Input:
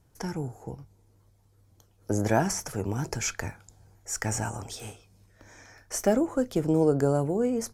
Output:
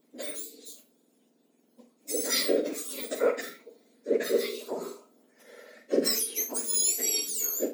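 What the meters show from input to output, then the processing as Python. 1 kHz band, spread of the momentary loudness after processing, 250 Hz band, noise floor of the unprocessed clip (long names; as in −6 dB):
−9.5 dB, 17 LU, −8.0 dB, −63 dBFS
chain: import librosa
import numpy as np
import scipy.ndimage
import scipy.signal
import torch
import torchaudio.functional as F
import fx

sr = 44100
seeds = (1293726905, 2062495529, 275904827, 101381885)

y = fx.octave_mirror(x, sr, pivot_hz=1800.0)
y = fx.room_early_taps(y, sr, ms=(42, 76), db=(-10.0, -14.5))
y = F.gain(torch.from_numpy(y), 2.0).numpy()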